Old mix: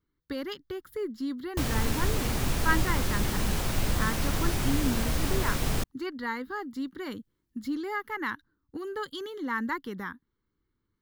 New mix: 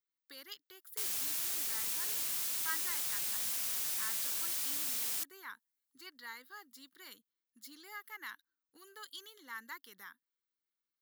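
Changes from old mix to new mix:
background: entry −0.60 s
master: add first difference

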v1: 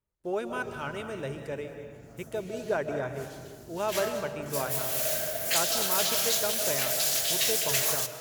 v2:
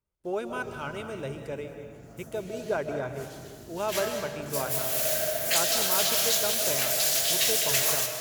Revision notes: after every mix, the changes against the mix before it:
speech: add notch filter 1,800 Hz, Q 10
background: send +9.5 dB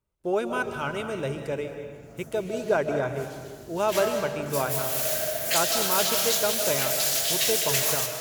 speech +5.5 dB

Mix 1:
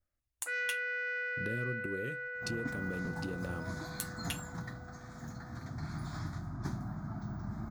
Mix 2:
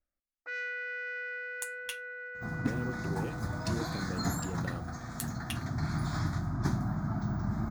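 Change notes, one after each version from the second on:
speech: entry +1.20 s
second sound +7.5 dB
reverb: off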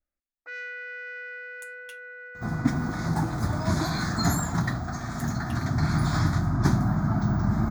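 speech −9.5 dB
second sound +8.5 dB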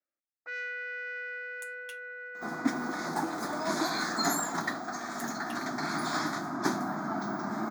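master: add high-pass filter 270 Hz 24 dB per octave

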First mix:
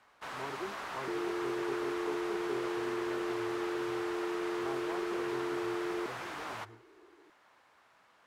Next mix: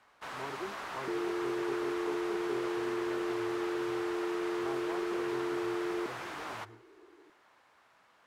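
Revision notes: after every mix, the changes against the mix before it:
second sound: send on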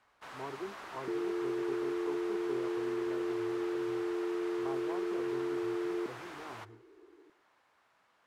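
first sound −5.5 dB

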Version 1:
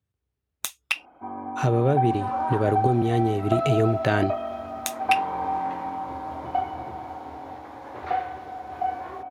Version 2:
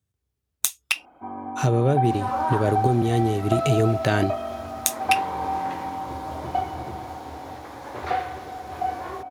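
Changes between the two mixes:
second sound +4.5 dB
master: add bass and treble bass +2 dB, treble +9 dB

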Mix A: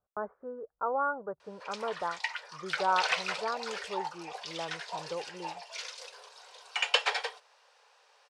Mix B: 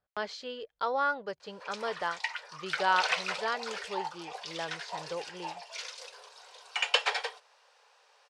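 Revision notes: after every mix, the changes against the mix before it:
speech: remove Butterworth low-pass 1,400 Hz 48 dB per octave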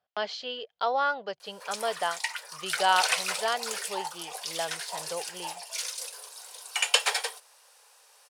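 speech: add loudspeaker in its box 140–5,100 Hz, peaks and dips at 310 Hz −4 dB, 710 Hz +9 dB, 3,000 Hz +7 dB
master: remove high-frequency loss of the air 160 metres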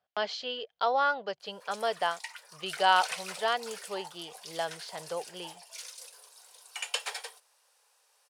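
background −10.0 dB

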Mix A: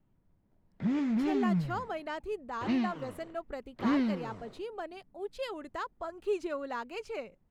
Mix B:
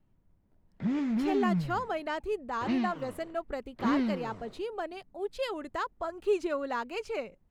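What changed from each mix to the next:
speech +4.0 dB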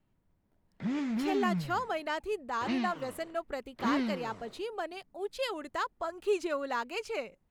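master: add spectral tilt +1.5 dB per octave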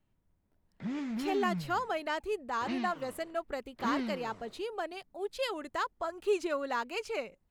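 background −3.5 dB

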